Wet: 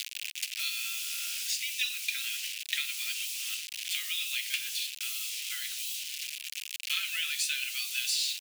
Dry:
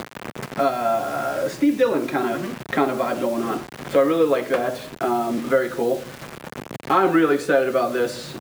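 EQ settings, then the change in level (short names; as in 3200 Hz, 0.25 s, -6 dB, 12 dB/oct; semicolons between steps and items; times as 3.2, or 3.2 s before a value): elliptic high-pass 2600 Hz, stop band 70 dB; +8.0 dB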